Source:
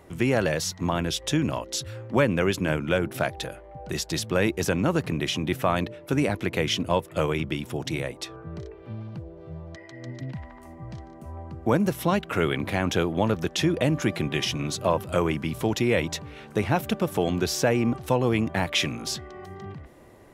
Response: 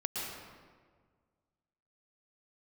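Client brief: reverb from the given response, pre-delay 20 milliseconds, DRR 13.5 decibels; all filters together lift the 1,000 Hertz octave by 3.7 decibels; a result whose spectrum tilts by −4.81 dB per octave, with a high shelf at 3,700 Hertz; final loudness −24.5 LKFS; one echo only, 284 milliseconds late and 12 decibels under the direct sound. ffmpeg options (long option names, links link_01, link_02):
-filter_complex "[0:a]equalizer=frequency=1000:width_type=o:gain=5,highshelf=frequency=3700:gain=-4,aecho=1:1:284:0.251,asplit=2[link_01][link_02];[1:a]atrim=start_sample=2205,adelay=20[link_03];[link_02][link_03]afir=irnorm=-1:irlink=0,volume=-17.5dB[link_04];[link_01][link_04]amix=inputs=2:normalize=0,volume=0.5dB"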